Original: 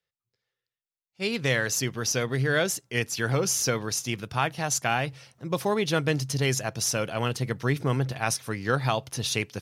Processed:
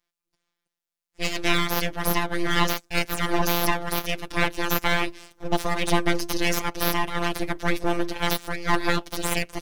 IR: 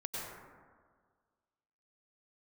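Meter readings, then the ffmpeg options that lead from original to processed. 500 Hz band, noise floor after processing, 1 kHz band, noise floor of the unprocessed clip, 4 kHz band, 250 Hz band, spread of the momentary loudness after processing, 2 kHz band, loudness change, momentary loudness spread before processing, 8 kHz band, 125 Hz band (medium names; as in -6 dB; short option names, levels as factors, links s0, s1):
-0.5 dB, under -85 dBFS, +4.5 dB, under -85 dBFS, +3.0 dB, +3.0 dB, 5 LU, +3.0 dB, +1.5 dB, 5 LU, -5.5 dB, -4.5 dB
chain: -af "afftfilt=real='hypot(re,im)*cos(PI*b)':imag='0':win_size=1024:overlap=0.75,aeval=exprs='abs(val(0))':c=same,volume=2.51"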